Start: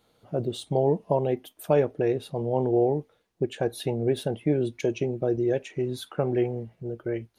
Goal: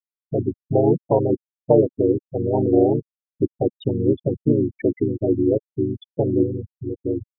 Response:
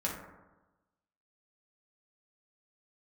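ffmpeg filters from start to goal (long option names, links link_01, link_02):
-filter_complex "[0:a]asplit=2[link_01][link_02];[link_02]asetrate=35002,aresample=44100,atempo=1.25992,volume=-1dB[link_03];[link_01][link_03]amix=inputs=2:normalize=0,afftfilt=real='re*gte(hypot(re,im),0.126)':imag='im*gte(hypot(re,im),0.126)':win_size=1024:overlap=0.75,volume=3.5dB"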